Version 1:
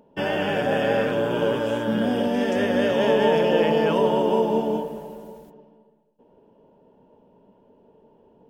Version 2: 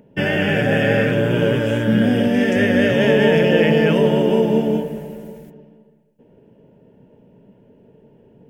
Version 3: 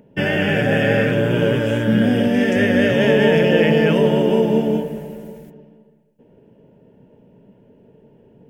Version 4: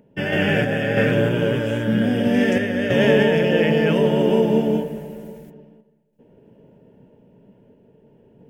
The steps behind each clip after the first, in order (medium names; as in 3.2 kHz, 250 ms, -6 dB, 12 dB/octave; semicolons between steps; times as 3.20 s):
graphic EQ 125/1000/2000/4000 Hz +10/-12/+9/-5 dB; trim +5.5 dB
no audible change
random-step tremolo 3.1 Hz